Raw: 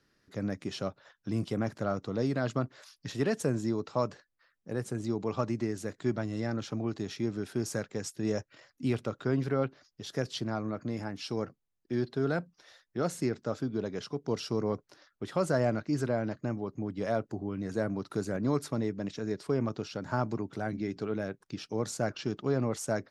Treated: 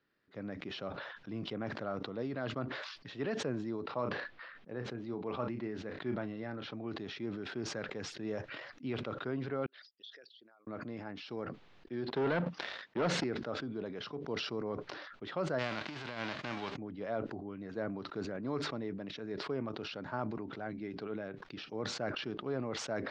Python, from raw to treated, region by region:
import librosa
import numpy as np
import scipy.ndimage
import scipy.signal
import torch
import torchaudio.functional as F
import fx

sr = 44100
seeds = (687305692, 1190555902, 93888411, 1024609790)

y = fx.chain(x, sr, fx.lowpass(hz=4700.0, slope=12),
    fx.doubler(ms=33.0, db=-12), at=(3.84, 6.73))
y = fx.chain(y, sr, fx.envelope_sharpen(power=2.0),
    fx.ladder_bandpass(hz=4000.0, resonance_pct=50),
    fx.peak_eq(hz=4300.0, db=-9.0, octaves=2.5), at=(9.66, 10.67))
y = fx.chain(y, sr, fx.highpass(hz=93.0, slope=12),
    fx.leveller(passes=3), at=(12.08, 13.24))
y = fx.envelope_flatten(y, sr, power=0.3, at=(15.58, 16.75), fade=0.02)
y = fx.over_compress(y, sr, threshold_db=-32.0, ratio=-0.5, at=(15.58, 16.75), fade=0.02)
y = scipy.signal.sosfilt(scipy.signal.butter(4, 3800.0, 'lowpass', fs=sr, output='sos'), y)
y = fx.low_shelf(y, sr, hz=140.0, db=-12.0)
y = fx.sustainer(y, sr, db_per_s=37.0)
y = y * 10.0 ** (-6.0 / 20.0)